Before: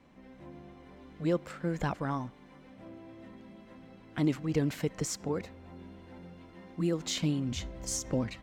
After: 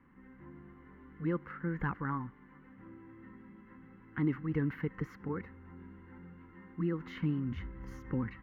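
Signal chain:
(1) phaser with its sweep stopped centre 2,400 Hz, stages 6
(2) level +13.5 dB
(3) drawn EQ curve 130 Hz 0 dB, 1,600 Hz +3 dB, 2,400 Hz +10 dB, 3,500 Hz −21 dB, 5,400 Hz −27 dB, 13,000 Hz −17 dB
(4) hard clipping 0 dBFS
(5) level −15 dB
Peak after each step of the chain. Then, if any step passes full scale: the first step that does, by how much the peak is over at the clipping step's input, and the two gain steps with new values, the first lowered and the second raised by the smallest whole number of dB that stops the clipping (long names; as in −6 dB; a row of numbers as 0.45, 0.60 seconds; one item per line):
−20.5, −7.0, −6.0, −6.0, −21.0 dBFS
no step passes full scale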